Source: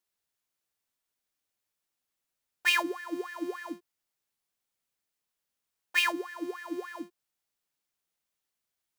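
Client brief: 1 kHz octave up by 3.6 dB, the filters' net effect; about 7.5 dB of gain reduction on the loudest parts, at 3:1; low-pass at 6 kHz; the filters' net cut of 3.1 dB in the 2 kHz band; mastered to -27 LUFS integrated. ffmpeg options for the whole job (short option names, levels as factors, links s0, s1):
-af "lowpass=6000,equalizer=f=1000:t=o:g=5,equalizer=f=2000:t=o:g=-5,acompressor=threshold=0.0251:ratio=3,volume=3.35"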